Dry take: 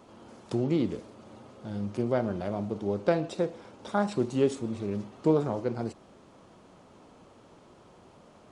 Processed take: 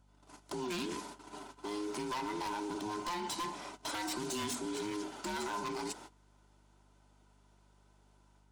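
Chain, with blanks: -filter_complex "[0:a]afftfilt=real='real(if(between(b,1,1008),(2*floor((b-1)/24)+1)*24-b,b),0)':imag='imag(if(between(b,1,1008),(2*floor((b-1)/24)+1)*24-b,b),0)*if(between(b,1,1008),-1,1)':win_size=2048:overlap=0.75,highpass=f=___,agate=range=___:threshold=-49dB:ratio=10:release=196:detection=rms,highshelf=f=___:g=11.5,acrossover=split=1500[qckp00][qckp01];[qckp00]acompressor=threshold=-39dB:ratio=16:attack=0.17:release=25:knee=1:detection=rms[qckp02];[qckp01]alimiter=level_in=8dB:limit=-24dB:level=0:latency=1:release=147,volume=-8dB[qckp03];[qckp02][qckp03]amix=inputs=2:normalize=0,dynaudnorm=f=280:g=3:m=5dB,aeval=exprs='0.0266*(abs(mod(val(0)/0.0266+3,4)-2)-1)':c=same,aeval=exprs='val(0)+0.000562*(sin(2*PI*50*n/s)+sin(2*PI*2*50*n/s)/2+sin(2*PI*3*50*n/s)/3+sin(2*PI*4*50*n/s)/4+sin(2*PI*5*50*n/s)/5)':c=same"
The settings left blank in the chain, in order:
330, -20dB, 4.8k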